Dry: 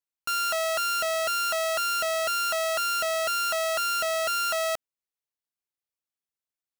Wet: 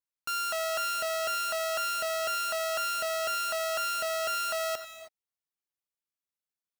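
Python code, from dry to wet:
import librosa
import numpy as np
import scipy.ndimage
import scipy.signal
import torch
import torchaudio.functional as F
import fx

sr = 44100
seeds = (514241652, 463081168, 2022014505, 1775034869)

y = fx.rev_gated(x, sr, seeds[0], gate_ms=340, shape='rising', drr_db=10.0)
y = y * librosa.db_to_amplitude(-4.5)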